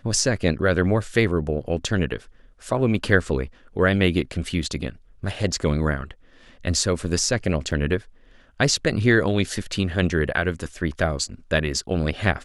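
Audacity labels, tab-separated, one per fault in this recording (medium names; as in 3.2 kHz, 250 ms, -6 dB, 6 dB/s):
7.710000	7.720000	dropout 5.9 ms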